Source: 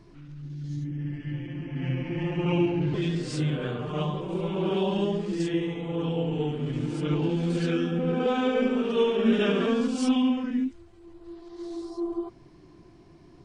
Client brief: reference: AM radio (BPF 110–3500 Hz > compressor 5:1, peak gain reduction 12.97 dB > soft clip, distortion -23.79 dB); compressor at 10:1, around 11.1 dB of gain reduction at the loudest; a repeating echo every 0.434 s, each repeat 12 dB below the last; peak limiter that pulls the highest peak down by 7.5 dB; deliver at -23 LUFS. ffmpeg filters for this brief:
-af "acompressor=threshold=-29dB:ratio=10,alimiter=level_in=5.5dB:limit=-24dB:level=0:latency=1,volume=-5.5dB,highpass=110,lowpass=3.5k,aecho=1:1:434|868|1302:0.251|0.0628|0.0157,acompressor=threshold=-46dB:ratio=5,asoftclip=threshold=-39.5dB,volume=26.5dB"

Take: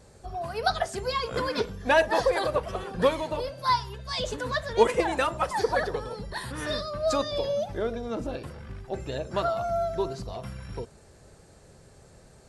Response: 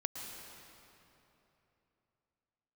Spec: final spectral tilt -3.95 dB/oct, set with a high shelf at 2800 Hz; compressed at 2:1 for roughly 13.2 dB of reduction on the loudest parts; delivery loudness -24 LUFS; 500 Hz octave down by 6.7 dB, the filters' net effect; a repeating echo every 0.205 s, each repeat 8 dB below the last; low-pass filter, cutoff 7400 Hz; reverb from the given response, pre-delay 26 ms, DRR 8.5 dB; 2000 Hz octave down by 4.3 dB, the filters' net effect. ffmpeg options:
-filter_complex "[0:a]lowpass=7.4k,equalizer=f=500:t=o:g=-8,equalizer=f=2k:t=o:g=-3.5,highshelf=f=2.8k:g=-4,acompressor=threshold=-45dB:ratio=2,aecho=1:1:205|410|615|820|1025:0.398|0.159|0.0637|0.0255|0.0102,asplit=2[a][b];[1:a]atrim=start_sample=2205,adelay=26[c];[b][c]afir=irnorm=-1:irlink=0,volume=-9.5dB[d];[a][d]amix=inputs=2:normalize=0,volume=17dB"

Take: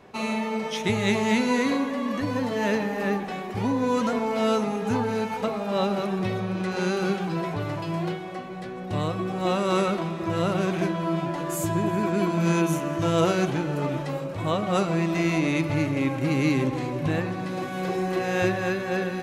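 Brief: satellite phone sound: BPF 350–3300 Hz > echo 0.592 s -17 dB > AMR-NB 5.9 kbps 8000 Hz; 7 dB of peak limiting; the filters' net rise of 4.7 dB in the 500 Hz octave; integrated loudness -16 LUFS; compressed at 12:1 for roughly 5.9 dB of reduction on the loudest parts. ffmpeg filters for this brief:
-af "equalizer=f=500:t=o:g=7.5,acompressor=threshold=-20dB:ratio=12,alimiter=limit=-19dB:level=0:latency=1,highpass=350,lowpass=3.3k,aecho=1:1:592:0.141,volume=15.5dB" -ar 8000 -c:a libopencore_amrnb -b:a 5900

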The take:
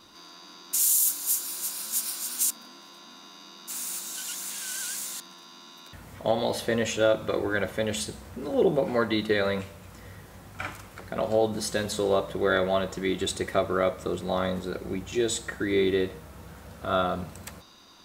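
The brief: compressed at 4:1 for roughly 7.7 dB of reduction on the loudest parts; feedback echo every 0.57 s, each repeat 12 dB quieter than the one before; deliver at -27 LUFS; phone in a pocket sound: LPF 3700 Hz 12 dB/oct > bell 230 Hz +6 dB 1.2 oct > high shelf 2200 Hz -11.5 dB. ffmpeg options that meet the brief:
-af "acompressor=threshold=-27dB:ratio=4,lowpass=3.7k,equalizer=f=230:t=o:w=1.2:g=6,highshelf=f=2.2k:g=-11.5,aecho=1:1:570|1140|1710:0.251|0.0628|0.0157,volume=4.5dB"

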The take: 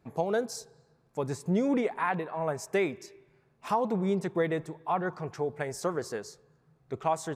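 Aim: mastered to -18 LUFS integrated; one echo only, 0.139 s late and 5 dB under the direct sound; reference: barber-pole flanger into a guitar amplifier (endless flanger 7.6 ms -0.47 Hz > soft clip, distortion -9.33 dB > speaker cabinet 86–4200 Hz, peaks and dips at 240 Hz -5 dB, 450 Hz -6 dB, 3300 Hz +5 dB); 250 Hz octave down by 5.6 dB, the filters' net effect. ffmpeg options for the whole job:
-filter_complex "[0:a]equalizer=f=250:t=o:g=-5,aecho=1:1:139:0.562,asplit=2[a][b];[b]adelay=7.6,afreqshift=-0.47[c];[a][c]amix=inputs=2:normalize=1,asoftclip=threshold=-32dB,highpass=86,equalizer=f=240:t=q:w=4:g=-5,equalizer=f=450:t=q:w=4:g=-6,equalizer=f=3.3k:t=q:w=4:g=5,lowpass=f=4.2k:w=0.5412,lowpass=f=4.2k:w=1.3066,volume=22dB"

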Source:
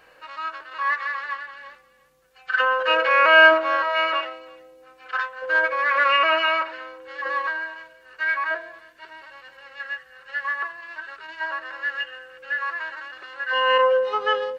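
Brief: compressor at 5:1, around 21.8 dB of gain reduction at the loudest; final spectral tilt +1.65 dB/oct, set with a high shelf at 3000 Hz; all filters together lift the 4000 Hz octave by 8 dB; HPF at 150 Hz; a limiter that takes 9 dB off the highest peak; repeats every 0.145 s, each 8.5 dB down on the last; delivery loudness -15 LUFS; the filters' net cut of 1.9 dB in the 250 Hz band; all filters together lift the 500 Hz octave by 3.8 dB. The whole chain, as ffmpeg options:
-af "highpass=150,equalizer=f=250:t=o:g=-5.5,equalizer=f=500:t=o:g=5,highshelf=f=3k:g=7.5,equalizer=f=4k:t=o:g=8,acompressor=threshold=-31dB:ratio=5,alimiter=level_in=3dB:limit=-24dB:level=0:latency=1,volume=-3dB,aecho=1:1:145|290|435|580:0.376|0.143|0.0543|0.0206,volume=19.5dB"

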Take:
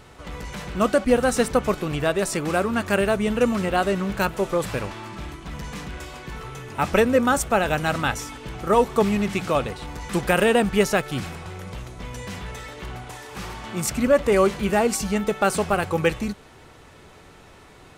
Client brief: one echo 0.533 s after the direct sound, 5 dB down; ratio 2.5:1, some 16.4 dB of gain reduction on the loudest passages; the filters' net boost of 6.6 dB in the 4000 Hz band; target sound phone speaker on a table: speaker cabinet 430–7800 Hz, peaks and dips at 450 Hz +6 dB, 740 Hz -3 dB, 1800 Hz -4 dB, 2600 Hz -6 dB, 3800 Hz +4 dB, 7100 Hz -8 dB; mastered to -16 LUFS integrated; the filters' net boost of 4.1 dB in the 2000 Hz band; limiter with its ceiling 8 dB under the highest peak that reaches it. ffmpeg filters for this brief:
-af "equalizer=f=2k:t=o:g=8.5,equalizer=f=4k:t=o:g=5.5,acompressor=threshold=-38dB:ratio=2.5,alimiter=level_in=1.5dB:limit=-24dB:level=0:latency=1,volume=-1.5dB,highpass=f=430:w=0.5412,highpass=f=430:w=1.3066,equalizer=f=450:t=q:w=4:g=6,equalizer=f=740:t=q:w=4:g=-3,equalizer=f=1.8k:t=q:w=4:g=-4,equalizer=f=2.6k:t=q:w=4:g=-6,equalizer=f=3.8k:t=q:w=4:g=4,equalizer=f=7.1k:t=q:w=4:g=-8,lowpass=f=7.8k:w=0.5412,lowpass=f=7.8k:w=1.3066,aecho=1:1:533:0.562,volume=22dB"

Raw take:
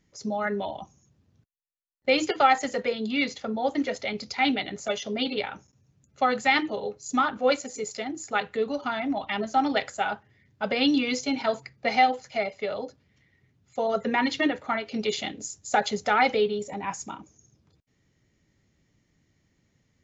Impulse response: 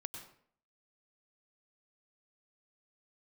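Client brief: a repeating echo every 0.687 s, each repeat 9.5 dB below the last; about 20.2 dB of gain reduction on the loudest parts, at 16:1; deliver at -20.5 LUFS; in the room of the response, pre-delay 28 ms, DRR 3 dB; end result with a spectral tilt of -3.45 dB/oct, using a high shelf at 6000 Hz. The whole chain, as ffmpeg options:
-filter_complex "[0:a]highshelf=f=6k:g=-7,acompressor=threshold=-35dB:ratio=16,aecho=1:1:687|1374|2061|2748:0.335|0.111|0.0365|0.012,asplit=2[a][b];[1:a]atrim=start_sample=2205,adelay=28[c];[b][c]afir=irnorm=-1:irlink=0,volume=-0.5dB[d];[a][d]amix=inputs=2:normalize=0,volume=17.5dB"

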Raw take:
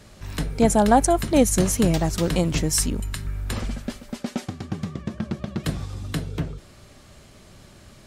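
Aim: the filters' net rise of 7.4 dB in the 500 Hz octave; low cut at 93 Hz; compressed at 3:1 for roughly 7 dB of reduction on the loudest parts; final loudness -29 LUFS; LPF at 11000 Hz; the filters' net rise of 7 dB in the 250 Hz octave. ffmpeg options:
-af "highpass=93,lowpass=11k,equalizer=f=250:t=o:g=7,equalizer=f=500:t=o:g=7.5,acompressor=threshold=-14dB:ratio=3,volume=-7dB"

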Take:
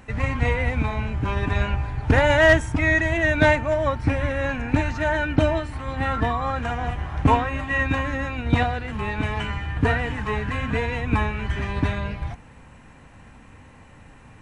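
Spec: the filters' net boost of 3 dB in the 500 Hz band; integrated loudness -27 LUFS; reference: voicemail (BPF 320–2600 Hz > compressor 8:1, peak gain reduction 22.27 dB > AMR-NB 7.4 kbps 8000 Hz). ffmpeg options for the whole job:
-af "highpass=320,lowpass=2.6k,equalizer=f=500:t=o:g=4.5,acompressor=threshold=-33dB:ratio=8,volume=10.5dB" -ar 8000 -c:a libopencore_amrnb -b:a 7400

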